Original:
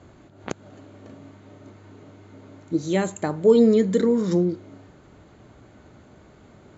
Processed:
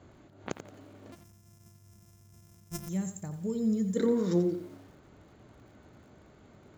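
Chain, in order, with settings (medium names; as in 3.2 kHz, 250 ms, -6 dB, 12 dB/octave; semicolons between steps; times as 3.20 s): 1.12–2.89 s: sorted samples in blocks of 128 samples; 1.15–3.97 s: time-frequency box 230–4900 Hz -16 dB; bit-crushed delay 87 ms, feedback 35%, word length 8-bit, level -10 dB; trim -6 dB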